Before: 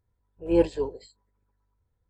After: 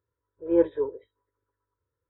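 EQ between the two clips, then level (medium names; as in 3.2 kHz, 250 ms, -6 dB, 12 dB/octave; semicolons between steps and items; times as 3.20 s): high-pass 140 Hz 12 dB/octave; brick-wall FIR low-pass 3.9 kHz; static phaser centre 750 Hz, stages 6; +1.5 dB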